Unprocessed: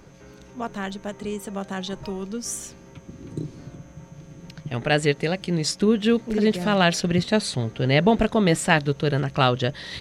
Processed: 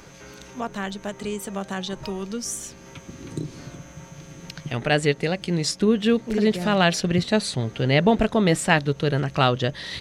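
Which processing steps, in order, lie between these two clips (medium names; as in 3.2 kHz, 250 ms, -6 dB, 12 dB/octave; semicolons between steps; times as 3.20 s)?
tape noise reduction on one side only encoder only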